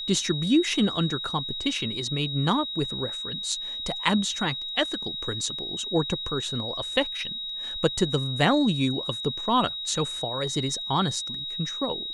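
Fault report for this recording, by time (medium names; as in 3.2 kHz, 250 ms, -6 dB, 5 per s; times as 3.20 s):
whine 3.8 kHz -31 dBFS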